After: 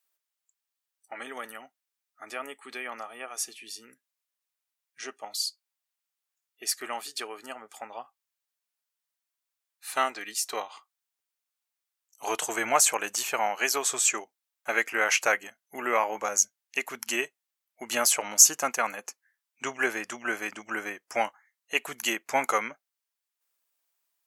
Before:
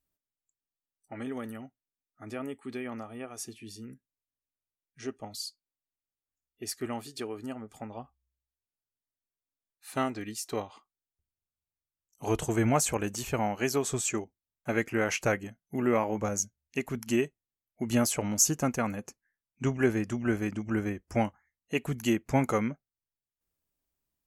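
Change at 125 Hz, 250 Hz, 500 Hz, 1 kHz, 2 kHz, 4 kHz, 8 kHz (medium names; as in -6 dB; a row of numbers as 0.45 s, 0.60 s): under -20 dB, -11.5 dB, -2.0 dB, +5.5 dB, +8.0 dB, +8.0 dB, +8.0 dB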